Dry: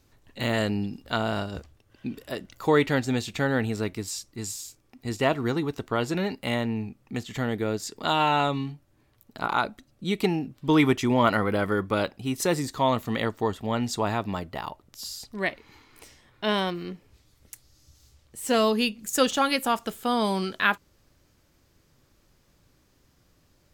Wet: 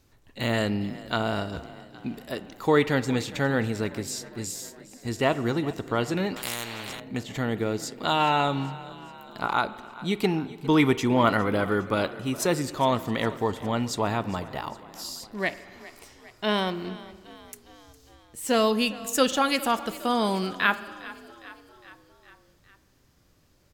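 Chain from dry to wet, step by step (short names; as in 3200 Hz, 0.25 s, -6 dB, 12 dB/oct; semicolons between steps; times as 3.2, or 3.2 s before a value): frequency-shifting echo 0.408 s, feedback 60%, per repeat +32 Hz, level -18.5 dB; spring tank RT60 1.6 s, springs 43 ms, chirp 25 ms, DRR 15.5 dB; 6.36–7 spectral compressor 4:1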